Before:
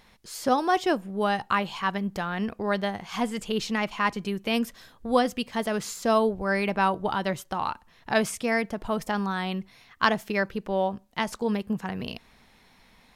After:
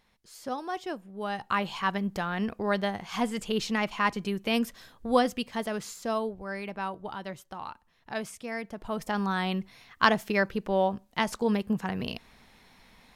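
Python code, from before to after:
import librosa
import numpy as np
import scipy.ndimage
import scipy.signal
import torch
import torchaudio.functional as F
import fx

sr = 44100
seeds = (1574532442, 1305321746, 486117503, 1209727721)

y = fx.gain(x, sr, db=fx.line((1.12, -11.0), (1.66, -1.0), (5.23, -1.0), (6.52, -10.5), (8.51, -10.5), (9.33, 0.5)))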